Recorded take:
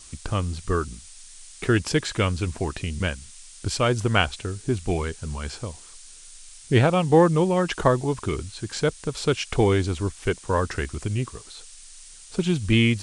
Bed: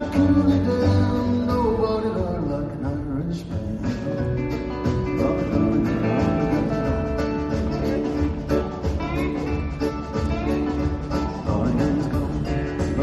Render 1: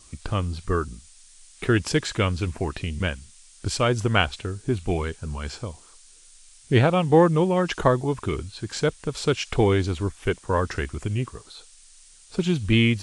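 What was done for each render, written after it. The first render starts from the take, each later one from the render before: noise print and reduce 6 dB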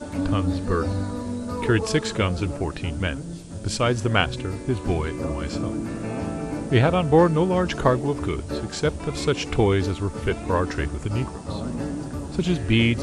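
add bed -8 dB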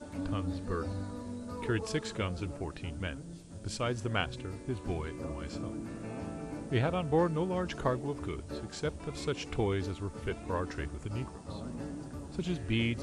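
gain -11.5 dB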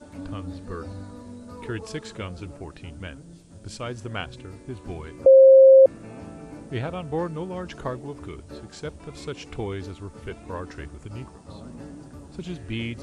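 5.26–5.86 bleep 533 Hz -7.5 dBFS

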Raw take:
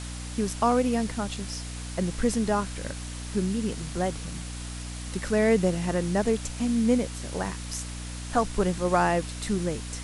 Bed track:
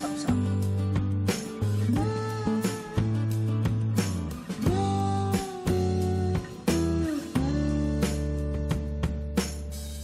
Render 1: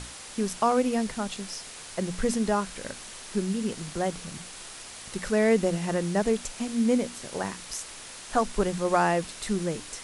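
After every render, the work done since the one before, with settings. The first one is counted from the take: notches 60/120/180/240/300 Hz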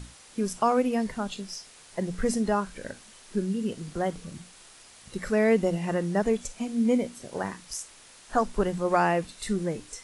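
noise print and reduce 9 dB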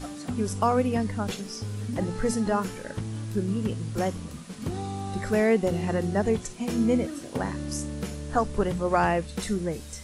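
add bed track -7 dB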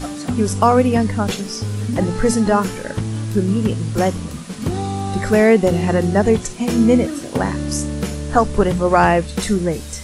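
gain +10 dB; limiter -2 dBFS, peak gain reduction 1 dB

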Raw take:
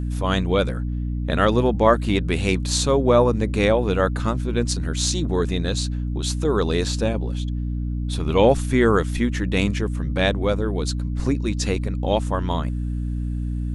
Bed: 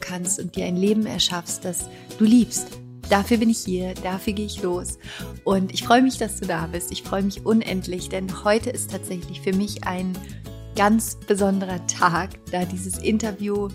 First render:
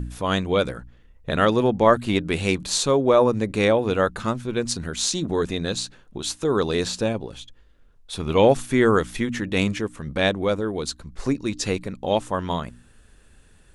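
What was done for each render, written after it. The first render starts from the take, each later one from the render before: de-hum 60 Hz, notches 5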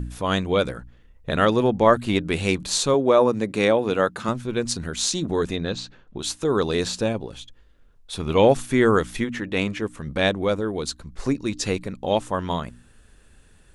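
2.94–4.29 HPF 140 Hz; 5.56–6.18 air absorption 130 m; 9.24–9.82 tone controls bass -5 dB, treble -7 dB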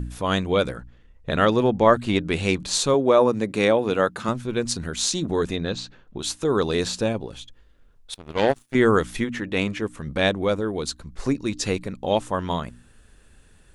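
0.76–2.74 LPF 8900 Hz; 8.14–8.75 power-law curve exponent 2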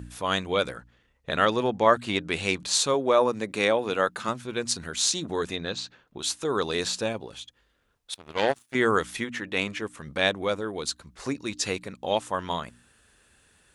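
HPF 56 Hz; low shelf 480 Hz -10 dB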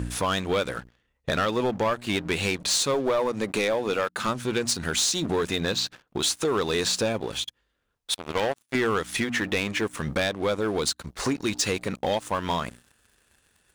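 compressor 4:1, threshold -32 dBFS, peak gain reduction 16 dB; sample leveller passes 3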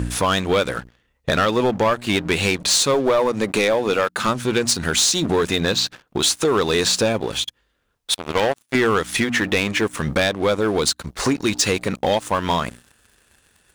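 gain +6.5 dB

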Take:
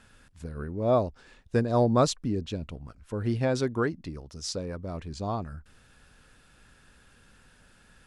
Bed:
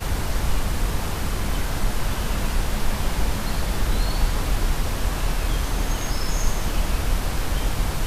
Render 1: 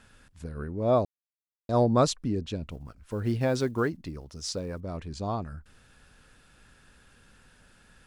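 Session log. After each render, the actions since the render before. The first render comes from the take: 1.05–1.69 mute; 2.69–4.81 block floating point 7-bit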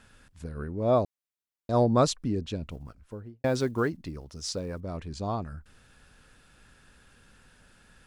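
2.81–3.44 studio fade out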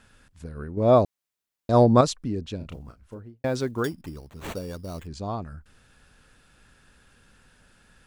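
0.77–2.01 gain +6 dB; 2.57–3.19 doubler 32 ms -6 dB; 3.84–5.07 sample-rate reducer 5100 Hz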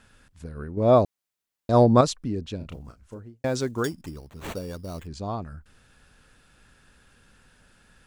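2.84–4.11 bell 7000 Hz +6.5 dB 0.87 oct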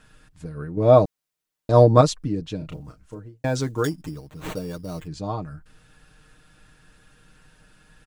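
low shelf 370 Hz +3 dB; comb 6.5 ms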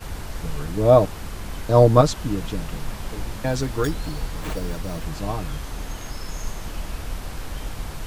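add bed -8 dB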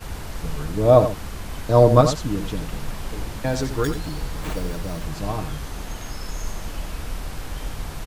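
echo 88 ms -9.5 dB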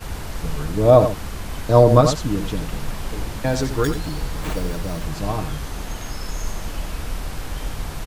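gain +2.5 dB; limiter -2 dBFS, peak gain reduction 3 dB

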